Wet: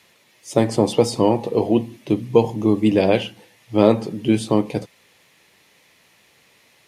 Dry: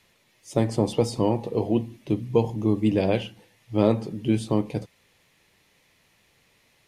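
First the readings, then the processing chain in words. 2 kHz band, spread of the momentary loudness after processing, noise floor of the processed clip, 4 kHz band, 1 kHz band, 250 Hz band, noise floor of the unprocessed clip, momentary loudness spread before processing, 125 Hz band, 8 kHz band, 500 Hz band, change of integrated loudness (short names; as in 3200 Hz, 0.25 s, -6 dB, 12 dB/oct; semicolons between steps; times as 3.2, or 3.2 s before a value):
+7.5 dB, 8 LU, -57 dBFS, +7.5 dB, +7.0 dB, +5.5 dB, -64 dBFS, 7 LU, +1.5 dB, n/a, +6.5 dB, +5.5 dB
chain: HPF 210 Hz 6 dB/oct; gain +7.5 dB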